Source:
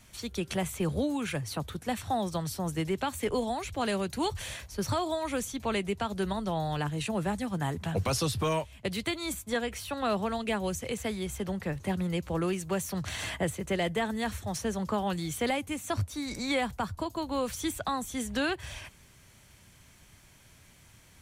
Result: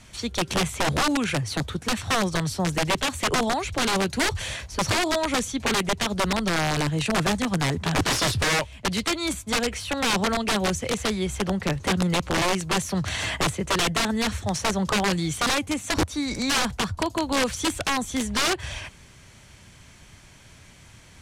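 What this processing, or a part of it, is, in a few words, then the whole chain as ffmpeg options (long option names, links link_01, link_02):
overflowing digital effects unit: -af "aeval=exprs='(mod(16.8*val(0)+1,2)-1)/16.8':channel_layout=same,lowpass=8300,volume=8dB"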